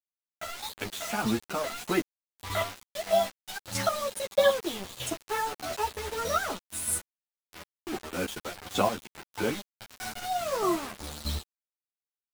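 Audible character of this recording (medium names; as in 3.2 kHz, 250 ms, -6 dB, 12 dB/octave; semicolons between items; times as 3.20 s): chopped level 1.6 Hz, depth 65%, duty 20%; a quantiser's noise floor 6-bit, dither none; a shimmering, thickened sound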